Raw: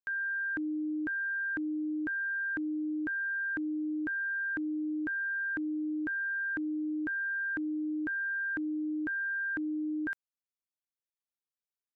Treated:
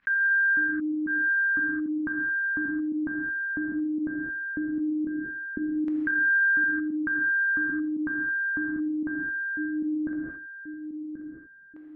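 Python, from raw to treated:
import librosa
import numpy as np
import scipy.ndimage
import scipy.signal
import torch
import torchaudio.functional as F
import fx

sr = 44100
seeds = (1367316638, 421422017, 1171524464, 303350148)

y = fx.air_absorb(x, sr, metres=150.0)
y = fx.volume_shaper(y, sr, bpm=113, per_beat=2, depth_db=-19, release_ms=60.0, shape='fast start')
y = fx.band_shelf(y, sr, hz=580.0, db=-11.0, octaves=1.7)
y = fx.notch(y, sr, hz=1300.0, q=20.0)
y = fx.echo_feedback(y, sr, ms=1083, feedback_pct=20, wet_db=-17)
y = fx.filter_lfo_lowpass(y, sr, shape='saw_down', hz=0.17, low_hz=390.0, high_hz=1800.0, q=2.1)
y = fx.rev_gated(y, sr, seeds[0], gate_ms=240, shape='flat', drr_db=0.5)
y = fx.env_flatten(y, sr, amount_pct=50)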